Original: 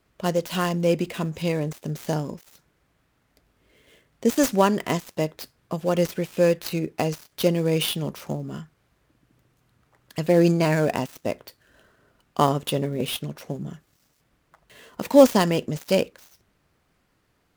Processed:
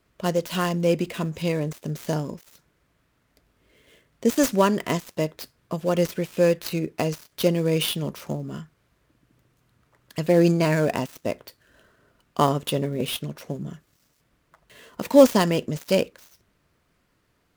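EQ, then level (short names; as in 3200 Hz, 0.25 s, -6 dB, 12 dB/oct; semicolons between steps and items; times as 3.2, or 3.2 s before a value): notch 790 Hz, Q 12; 0.0 dB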